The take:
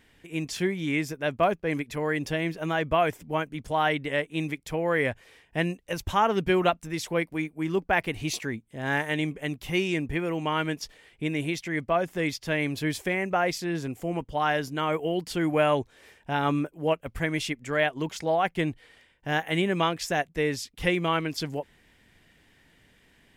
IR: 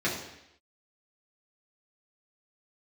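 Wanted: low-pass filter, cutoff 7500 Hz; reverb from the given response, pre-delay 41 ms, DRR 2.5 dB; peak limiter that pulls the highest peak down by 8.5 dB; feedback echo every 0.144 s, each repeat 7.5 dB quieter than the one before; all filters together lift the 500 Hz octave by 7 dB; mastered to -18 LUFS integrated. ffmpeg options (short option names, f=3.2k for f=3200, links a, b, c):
-filter_complex "[0:a]lowpass=7.5k,equalizer=f=500:t=o:g=9,alimiter=limit=-14.5dB:level=0:latency=1,aecho=1:1:144|288|432|576|720:0.422|0.177|0.0744|0.0312|0.0131,asplit=2[a][b];[1:a]atrim=start_sample=2205,adelay=41[c];[b][c]afir=irnorm=-1:irlink=0,volume=-13dB[d];[a][d]amix=inputs=2:normalize=0,volume=4.5dB"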